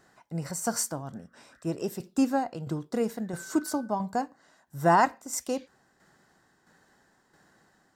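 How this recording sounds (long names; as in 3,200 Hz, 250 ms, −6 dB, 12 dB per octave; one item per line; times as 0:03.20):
tremolo saw down 1.5 Hz, depth 55%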